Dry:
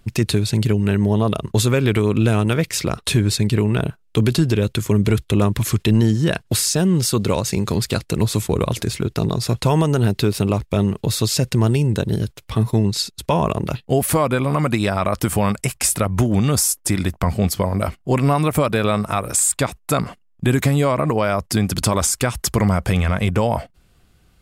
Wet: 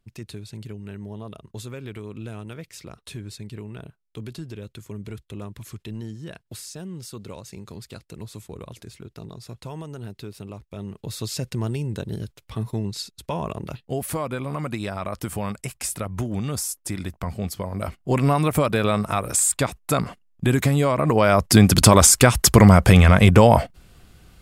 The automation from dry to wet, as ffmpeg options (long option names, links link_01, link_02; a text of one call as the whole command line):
ffmpeg -i in.wav -af "volume=6dB,afade=type=in:start_time=10.71:duration=0.62:silence=0.354813,afade=type=in:start_time=17.7:duration=0.5:silence=0.421697,afade=type=in:start_time=20.98:duration=0.62:silence=0.375837" out.wav